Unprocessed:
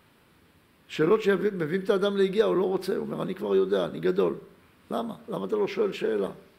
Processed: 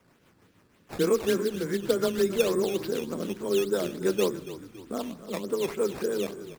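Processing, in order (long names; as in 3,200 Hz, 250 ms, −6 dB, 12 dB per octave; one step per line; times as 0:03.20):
frequency shifter +15 Hz
on a send at −22 dB: convolution reverb RT60 1.2 s, pre-delay 6 ms
on the sum: rotating-speaker cabinet horn 6.3 Hz
sample-and-hold swept by an LFO 10×, swing 100% 3.4 Hz
echo with shifted repeats 280 ms, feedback 45%, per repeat −44 Hz, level −14 dB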